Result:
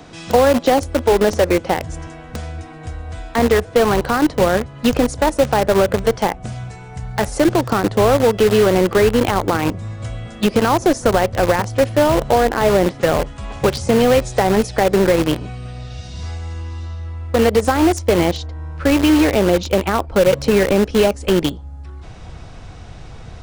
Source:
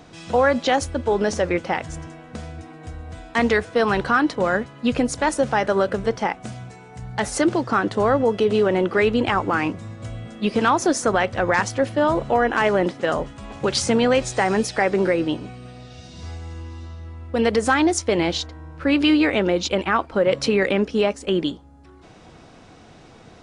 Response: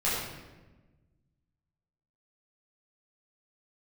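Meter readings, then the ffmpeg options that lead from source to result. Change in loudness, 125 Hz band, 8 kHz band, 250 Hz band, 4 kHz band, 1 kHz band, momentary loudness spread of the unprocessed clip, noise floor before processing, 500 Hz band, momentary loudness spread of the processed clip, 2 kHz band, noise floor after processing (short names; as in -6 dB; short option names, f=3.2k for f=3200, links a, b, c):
+4.5 dB, +8.0 dB, +2.0 dB, +4.5 dB, +3.0 dB, +3.5 dB, 18 LU, -47 dBFS, +5.5 dB, 17 LU, 0.0 dB, -36 dBFS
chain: -filter_complex "[0:a]asubboost=boost=7.5:cutoff=92,acrossover=split=200|790[a][b][c];[a]acompressor=threshold=-35dB:ratio=4[d];[b]acompressor=threshold=-20dB:ratio=4[e];[c]acompressor=threshold=-37dB:ratio=4[f];[d][e][f]amix=inputs=3:normalize=0,asplit=2[g][h];[h]acrusher=bits=3:mix=0:aa=0.000001,volume=-5dB[i];[g][i]amix=inputs=2:normalize=0,volume=6dB"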